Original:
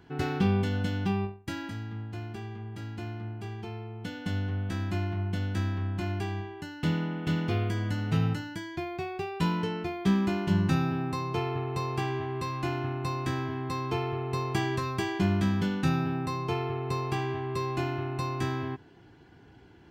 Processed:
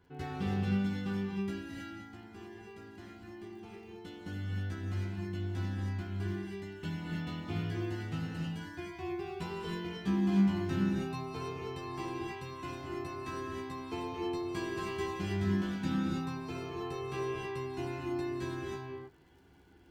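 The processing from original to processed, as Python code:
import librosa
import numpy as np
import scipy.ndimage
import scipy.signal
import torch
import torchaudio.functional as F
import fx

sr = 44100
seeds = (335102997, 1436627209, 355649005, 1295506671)

y = fx.chorus_voices(x, sr, voices=6, hz=0.13, base_ms=13, depth_ms=2.3, mix_pct=45)
y = fx.dmg_crackle(y, sr, seeds[0], per_s=43.0, level_db=-51.0)
y = fx.rev_gated(y, sr, seeds[1], gate_ms=340, shape='rising', drr_db=-1.5)
y = y * 10.0 ** (-7.5 / 20.0)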